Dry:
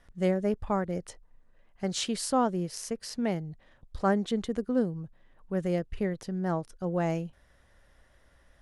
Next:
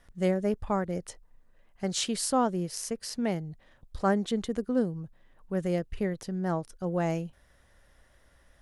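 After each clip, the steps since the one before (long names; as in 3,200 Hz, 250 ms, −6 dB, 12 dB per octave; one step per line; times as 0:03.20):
high-shelf EQ 6,800 Hz +5.5 dB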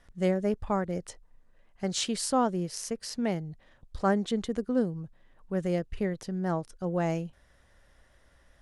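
low-pass filter 10,000 Hz 12 dB per octave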